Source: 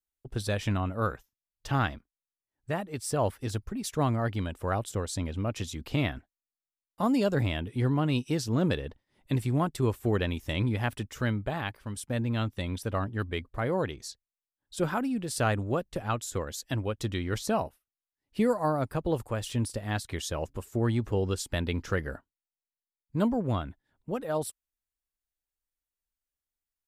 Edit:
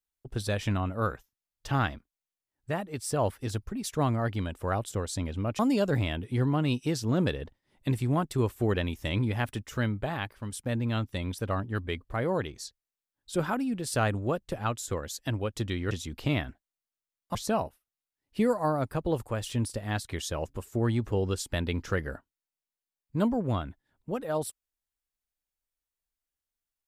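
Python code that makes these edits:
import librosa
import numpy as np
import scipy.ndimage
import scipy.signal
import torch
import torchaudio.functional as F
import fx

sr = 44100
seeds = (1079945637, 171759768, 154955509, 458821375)

y = fx.edit(x, sr, fx.move(start_s=5.59, length_s=1.44, to_s=17.35), tone=tone)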